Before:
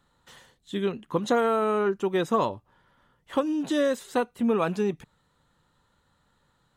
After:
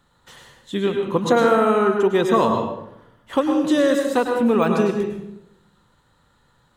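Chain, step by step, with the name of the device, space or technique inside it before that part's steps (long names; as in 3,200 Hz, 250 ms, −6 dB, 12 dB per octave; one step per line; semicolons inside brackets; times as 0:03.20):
bathroom (convolution reverb RT60 0.80 s, pre-delay 96 ms, DRR 3 dB)
0:04.32–0:04.73: de-essing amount 90%
level +5.5 dB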